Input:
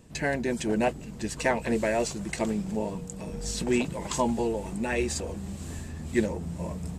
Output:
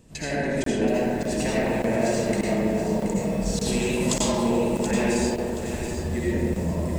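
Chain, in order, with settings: peaking EQ 1.3 kHz -3 dB 1.4 oct; compression, threshold -29 dBFS, peak gain reduction 10 dB; 3.59–4.14 s: treble shelf 2.8 kHz +11.5 dB; 5.05–5.59 s: high-pass 340 Hz; algorithmic reverb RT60 2.9 s, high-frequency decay 0.3×, pre-delay 40 ms, DRR -8 dB; crackling interface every 0.59 s, samples 1024, zero, from 0.64 s; bit-crushed delay 727 ms, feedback 35%, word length 7-bit, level -8.5 dB

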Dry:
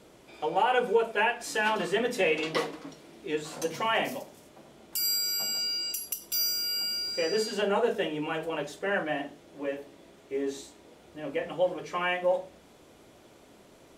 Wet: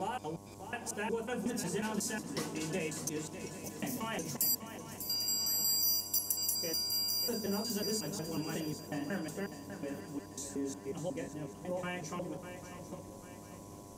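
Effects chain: slices played last to first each 182 ms, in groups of 4; FFT filter 220 Hz 0 dB, 510 Hz -15 dB, 3.4 kHz -15 dB, 6.1 kHz +1 dB; compression 1.5:1, threshold -49 dBFS, peak gain reduction 8 dB; mains buzz 100 Hz, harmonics 11, -60 dBFS -3 dB/octave; on a send: shuffle delay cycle 796 ms, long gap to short 3:1, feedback 42%, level -11 dB; on the sum: trim +6.5 dB

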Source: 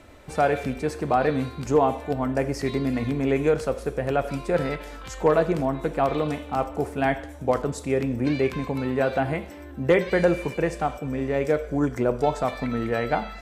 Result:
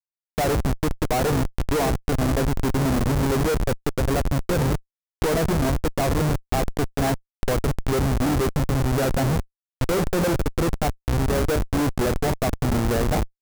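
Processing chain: Schmitt trigger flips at -24.5 dBFS; dynamic bell 3 kHz, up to -5 dB, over -42 dBFS, Q 0.79; trim +4.5 dB

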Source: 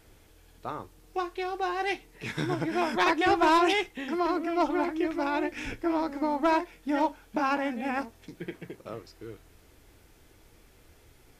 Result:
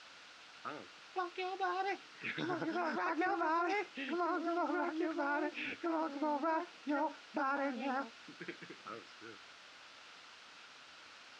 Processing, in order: touch-sensitive phaser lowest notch 400 Hz, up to 3.2 kHz, full sweep at -25 dBFS; word length cut 8-bit, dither triangular; cabinet simulation 270–5000 Hz, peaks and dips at 390 Hz -4 dB, 1.4 kHz +8 dB, 2.7 kHz +4 dB; peak limiter -23 dBFS, peak gain reduction 10 dB; trim -4 dB

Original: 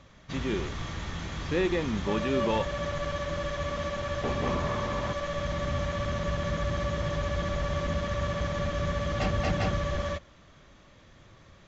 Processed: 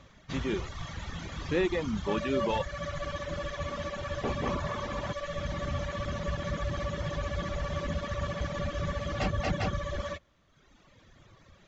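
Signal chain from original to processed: reverb removal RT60 1.3 s

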